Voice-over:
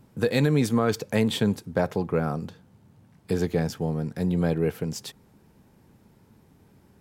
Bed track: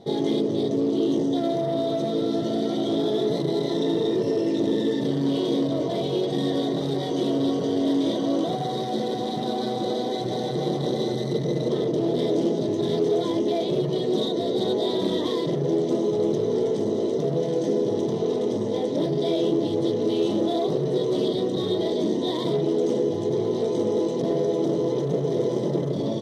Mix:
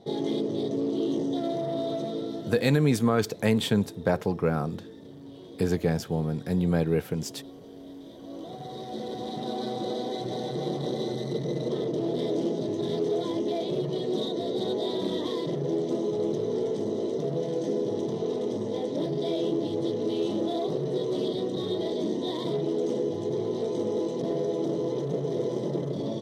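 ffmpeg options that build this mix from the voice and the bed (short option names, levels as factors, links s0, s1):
-filter_complex "[0:a]adelay=2300,volume=0.944[s0];[1:a]volume=3.98,afade=t=out:st=1.92:d=0.86:silence=0.141254,afade=t=in:st=8.14:d=1.46:silence=0.141254[s1];[s0][s1]amix=inputs=2:normalize=0"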